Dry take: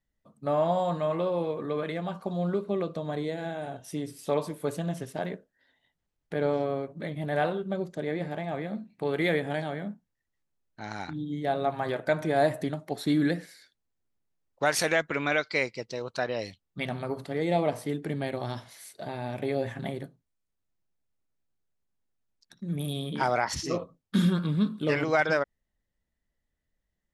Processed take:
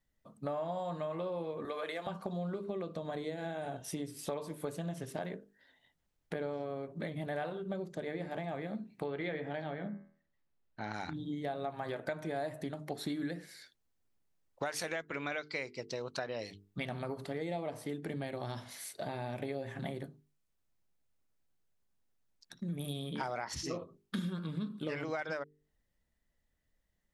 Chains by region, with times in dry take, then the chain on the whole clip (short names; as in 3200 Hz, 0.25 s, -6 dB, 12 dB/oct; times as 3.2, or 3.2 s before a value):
1.65–2.07 HPF 490 Hz + high shelf 5600 Hz +7.5 dB
9.06–10.94 Gaussian blur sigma 1.7 samples + de-hum 81.34 Hz, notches 31
whole clip: notches 50/100/150/200/250/300/350/400/450 Hz; compressor 5:1, threshold -38 dBFS; gain +2 dB